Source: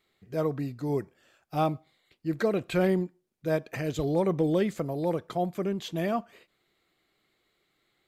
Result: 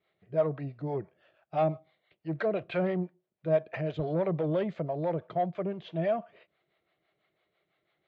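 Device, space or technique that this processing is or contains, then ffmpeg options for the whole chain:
guitar amplifier with harmonic tremolo: -filter_complex "[0:a]acrossover=split=460[link_01][link_02];[link_01]aeval=exprs='val(0)*(1-0.7/2+0.7/2*cos(2*PI*6*n/s))':channel_layout=same[link_03];[link_02]aeval=exprs='val(0)*(1-0.7/2-0.7/2*cos(2*PI*6*n/s))':channel_layout=same[link_04];[link_03][link_04]amix=inputs=2:normalize=0,asoftclip=type=tanh:threshold=-23dB,highpass=81,equalizer=frequency=160:width_type=q:width=4:gain=4,equalizer=frequency=250:width_type=q:width=4:gain=-8,equalizer=frequency=630:width_type=q:width=4:gain=10,lowpass=frequency=3400:width=0.5412,lowpass=frequency=3400:width=1.3066"

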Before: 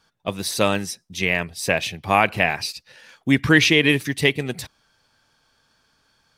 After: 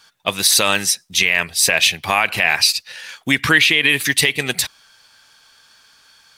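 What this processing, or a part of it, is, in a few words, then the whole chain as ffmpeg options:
mastering chain: -filter_complex "[0:a]equalizer=frequency=5400:width_type=o:width=0.33:gain=-2,acompressor=threshold=-18dB:ratio=3,tiltshelf=frequency=870:gain=-8.5,alimiter=level_in=8.5dB:limit=-1dB:release=50:level=0:latency=1,asettb=1/sr,asplit=3[link_01][link_02][link_03];[link_01]atrim=end=3.504[link_04];[link_02]atrim=start=3.5:end=4.04,asetpts=PTS-STARTPTS,afade=type=in:duration=0.004:curve=qsin,afade=type=out:start_time=0.536:duration=0.004:curve=qsin,equalizer=frequency=5800:width_type=o:width=0.46:gain=-8.5[link_05];[link_03]atrim=start=4.036[link_06];[link_04][link_05]acrossfade=duration=0.004:curve1=hsin:curve2=qsin[link_07];[link_07][link_06]acrossfade=duration=0.004:curve1=qsin:curve2=hsin,volume=-1dB"

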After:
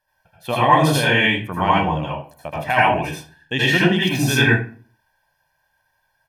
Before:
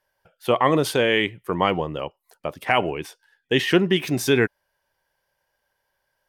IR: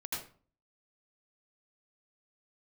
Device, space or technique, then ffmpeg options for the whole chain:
microphone above a desk: -filter_complex "[0:a]aecho=1:1:1.2:0.61[link_01];[1:a]atrim=start_sample=2205[link_02];[link_01][link_02]afir=irnorm=-1:irlink=0,volume=2.5dB"

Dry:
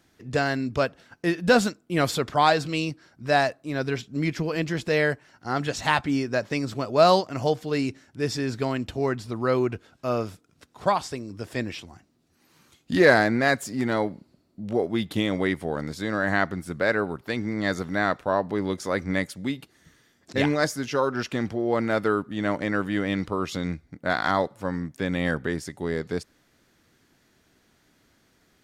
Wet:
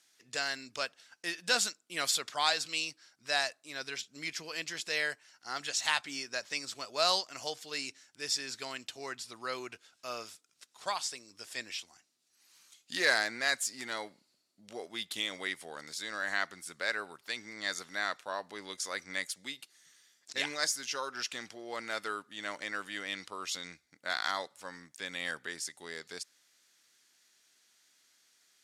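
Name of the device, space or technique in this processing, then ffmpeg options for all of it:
piezo pickup straight into a mixer: -af "lowpass=8400,aderivative,volume=5.5dB"

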